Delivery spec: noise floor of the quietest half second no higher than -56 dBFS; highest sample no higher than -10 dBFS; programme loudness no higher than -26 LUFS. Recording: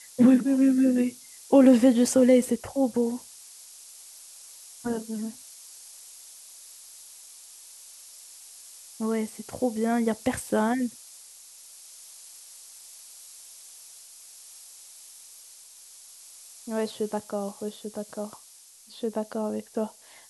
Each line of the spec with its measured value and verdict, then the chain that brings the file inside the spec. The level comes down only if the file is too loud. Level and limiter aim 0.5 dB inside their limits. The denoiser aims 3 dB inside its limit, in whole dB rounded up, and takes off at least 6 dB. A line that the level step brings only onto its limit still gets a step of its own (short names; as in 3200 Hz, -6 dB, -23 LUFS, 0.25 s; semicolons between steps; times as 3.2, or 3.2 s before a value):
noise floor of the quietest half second -52 dBFS: fail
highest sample -7.5 dBFS: fail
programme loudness -25.0 LUFS: fail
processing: denoiser 6 dB, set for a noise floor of -52 dBFS; gain -1.5 dB; limiter -10.5 dBFS